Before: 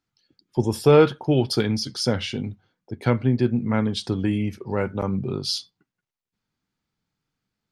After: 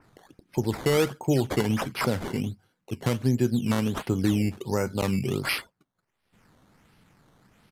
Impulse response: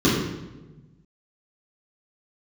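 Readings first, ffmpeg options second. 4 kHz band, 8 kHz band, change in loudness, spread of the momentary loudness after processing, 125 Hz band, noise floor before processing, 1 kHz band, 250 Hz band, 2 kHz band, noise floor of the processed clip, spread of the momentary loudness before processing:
−6.0 dB, −1.0 dB, −4.0 dB, 7 LU, −3.0 dB, −85 dBFS, −3.0 dB, −2.5 dB, +0.5 dB, −79 dBFS, 12 LU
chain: -af "equalizer=frequency=3800:width=7.7:gain=-5,alimiter=limit=-13dB:level=0:latency=1:release=281,acompressor=mode=upward:threshold=-41dB:ratio=2.5,acrusher=samples=12:mix=1:aa=0.000001:lfo=1:lforange=12:lforate=1.4,aresample=32000,aresample=44100,adynamicequalizer=threshold=0.01:dfrequency=3000:dqfactor=0.7:tfrequency=3000:tqfactor=0.7:attack=5:release=100:ratio=0.375:range=1.5:mode=cutabove:tftype=highshelf"

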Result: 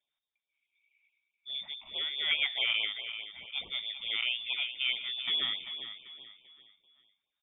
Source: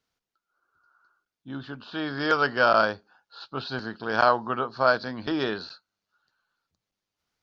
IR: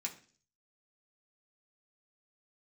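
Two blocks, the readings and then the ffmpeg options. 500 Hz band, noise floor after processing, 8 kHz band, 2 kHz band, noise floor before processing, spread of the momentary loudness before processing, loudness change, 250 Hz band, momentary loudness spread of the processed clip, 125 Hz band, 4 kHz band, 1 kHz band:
−28.5 dB, below −85 dBFS, can't be measured, −7.0 dB, below −85 dBFS, 17 LU, −6.5 dB, below −25 dB, 14 LU, below −25 dB, +7.5 dB, −27.5 dB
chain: -af "equalizer=frequency=1000:width=0.4:gain=-8.5,alimiter=limit=-18.5dB:level=0:latency=1:release=161,aecho=1:1:390|780|1170|1560:0.316|0.117|0.0433|0.016,lowpass=frequency=3100:width_type=q:width=0.5098,lowpass=frequency=3100:width_type=q:width=0.6013,lowpass=frequency=3100:width_type=q:width=0.9,lowpass=frequency=3100:width_type=q:width=2.563,afreqshift=-3700,afftfilt=real='re*(1-between(b*sr/1024,370*pow(1700/370,0.5+0.5*sin(2*PI*4.7*pts/sr))/1.41,370*pow(1700/370,0.5+0.5*sin(2*PI*4.7*pts/sr))*1.41))':imag='im*(1-between(b*sr/1024,370*pow(1700/370,0.5+0.5*sin(2*PI*4.7*pts/sr))/1.41,370*pow(1700/370,0.5+0.5*sin(2*PI*4.7*pts/sr))*1.41))':win_size=1024:overlap=0.75"

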